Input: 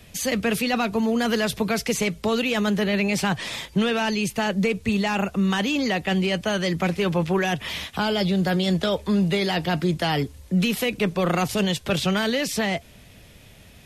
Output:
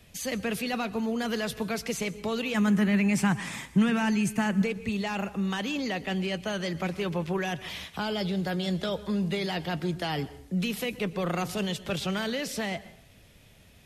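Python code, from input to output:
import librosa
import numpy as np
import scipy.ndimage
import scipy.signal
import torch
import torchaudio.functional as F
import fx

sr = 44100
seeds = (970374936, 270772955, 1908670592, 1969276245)

y = fx.graphic_eq(x, sr, hz=(125, 250, 500, 1000, 2000, 4000, 8000), db=(5, 9, -6, 4, 5, -8, 7), at=(2.54, 4.62))
y = fx.rev_plate(y, sr, seeds[0], rt60_s=0.61, hf_ratio=0.75, predelay_ms=105, drr_db=16.5)
y = F.gain(torch.from_numpy(y), -7.5).numpy()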